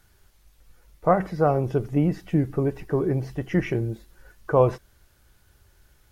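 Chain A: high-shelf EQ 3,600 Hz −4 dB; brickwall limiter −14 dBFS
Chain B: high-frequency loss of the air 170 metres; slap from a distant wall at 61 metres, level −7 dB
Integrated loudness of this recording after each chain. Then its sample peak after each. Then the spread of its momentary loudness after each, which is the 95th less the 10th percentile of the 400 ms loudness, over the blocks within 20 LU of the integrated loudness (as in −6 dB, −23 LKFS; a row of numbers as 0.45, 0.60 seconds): −26.5, −24.5 LKFS; −14.0, −7.0 dBFS; 8, 8 LU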